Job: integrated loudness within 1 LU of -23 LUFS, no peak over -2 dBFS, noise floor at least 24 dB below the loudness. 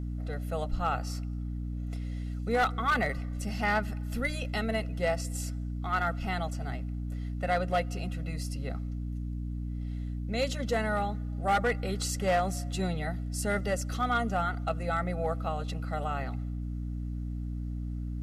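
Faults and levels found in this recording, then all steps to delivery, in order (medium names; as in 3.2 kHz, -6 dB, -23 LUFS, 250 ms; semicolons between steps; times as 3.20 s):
clipped samples 0.4%; clipping level -20.5 dBFS; hum 60 Hz; highest harmonic 300 Hz; hum level -32 dBFS; loudness -32.0 LUFS; peak level -20.5 dBFS; loudness target -23.0 LUFS
-> clip repair -20.5 dBFS; hum notches 60/120/180/240/300 Hz; trim +9 dB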